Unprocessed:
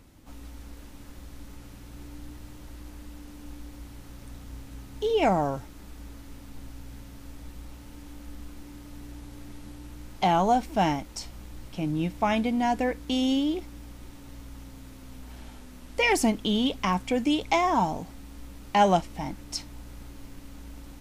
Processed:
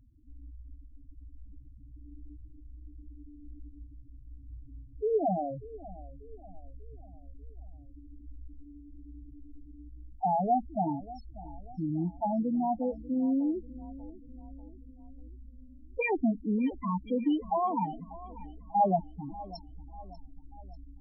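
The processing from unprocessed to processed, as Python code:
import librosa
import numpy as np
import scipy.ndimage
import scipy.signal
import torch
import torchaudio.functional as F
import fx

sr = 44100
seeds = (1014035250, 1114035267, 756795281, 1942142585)

p1 = fx.lowpass(x, sr, hz=3600.0, slope=6)
p2 = fx.spec_topn(p1, sr, count=4)
p3 = p2 + fx.echo_feedback(p2, sr, ms=591, feedback_pct=49, wet_db=-18, dry=0)
y = F.gain(torch.from_numpy(p3), -2.5).numpy()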